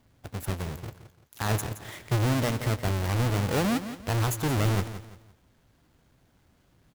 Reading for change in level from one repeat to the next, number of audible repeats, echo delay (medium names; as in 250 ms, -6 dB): -9.5 dB, 3, 171 ms